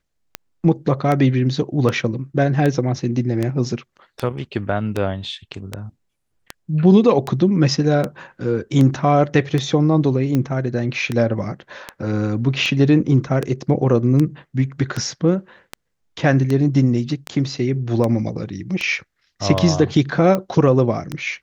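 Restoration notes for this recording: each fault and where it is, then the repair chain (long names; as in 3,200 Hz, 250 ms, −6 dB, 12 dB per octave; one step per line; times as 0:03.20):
scratch tick 78 rpm −9 dBFS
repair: click removal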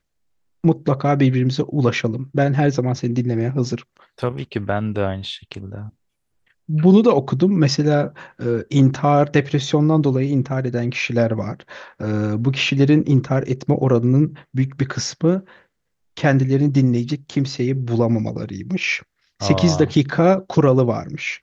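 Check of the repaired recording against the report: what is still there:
none of them is left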